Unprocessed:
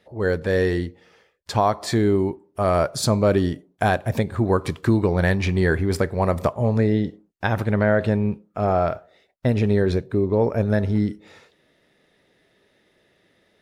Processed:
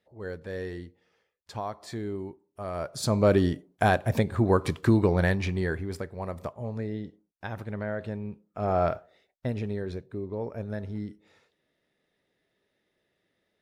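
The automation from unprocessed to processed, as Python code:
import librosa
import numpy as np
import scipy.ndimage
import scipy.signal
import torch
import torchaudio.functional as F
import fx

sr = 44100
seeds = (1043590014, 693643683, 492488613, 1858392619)

y = fx.gain(x, sr, db=fx.line((2.72, -15.0), (3.25, -2.5), (5.09, -2.5), (6.05, -14.0), (8.31, -14.0), (8.86, -3.0), (9.8, -14.0)))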